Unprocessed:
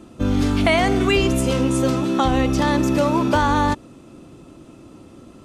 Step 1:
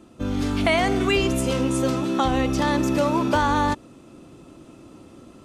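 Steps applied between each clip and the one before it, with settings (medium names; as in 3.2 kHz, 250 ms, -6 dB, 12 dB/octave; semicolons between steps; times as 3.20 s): level rider gain up to 4 dB; bass shelf 220 Hz -3 dB; trim -5 dB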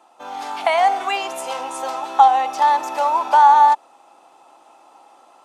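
resonant high-pass 820 Hz, resonance Q 8.6; trim -2 dB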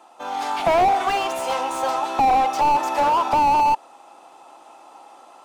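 slew-rate limiter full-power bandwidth 96 Hz; trim +3.5 dB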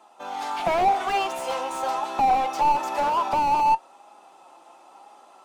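flange 0.97 Hz, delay 4.7 ms, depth 1.2 ms, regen +65%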